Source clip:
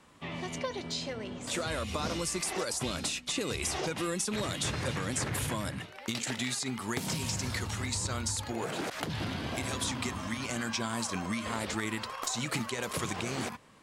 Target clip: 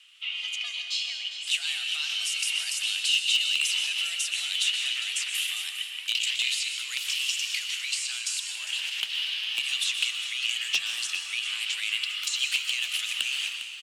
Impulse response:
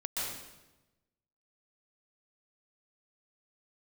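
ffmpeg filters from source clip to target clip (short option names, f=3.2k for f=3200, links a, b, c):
-filter_complex "[0:a]highpass=f=2.7k:t=q:w=7.6,aeval=exprs='0.168*(abs(mod(val(0)/0.168+3,4)-2)-1)':c=same,afreqshift=170,aecho=1:1:404:0.251,asplit=2[a][b];[1:a]atrim=start_sample=2205[c];[b][c]afir=irnorm=-1:irlink=0,volume=-6.5dB[d];[a][d]amix=inputs=2:normalize=0,volume=-1.5dB"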